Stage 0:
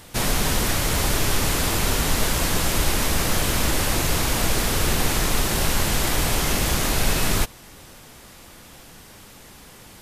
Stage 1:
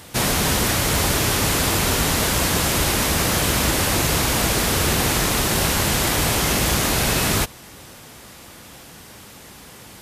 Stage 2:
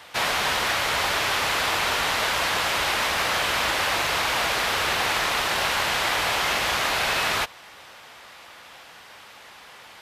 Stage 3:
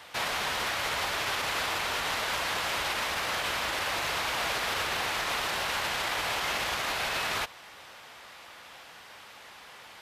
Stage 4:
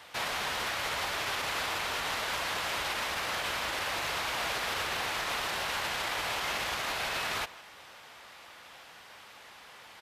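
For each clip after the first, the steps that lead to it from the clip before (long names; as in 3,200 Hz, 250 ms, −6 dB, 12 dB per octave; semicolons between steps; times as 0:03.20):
high-pass filter 58 Hz; level +3.5 dB
three-way crossover with the lows and the highs turned down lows −19 dB, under 580 Hz, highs −15 dB, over 4,400 Hz; level +1.5 dB
brickwall limiter −18.5 dBFS, peak gain reduction 7 dB; level −3 dB
far-end echo of a speakerphone 160 ms, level −16 dB; level −2.5 dB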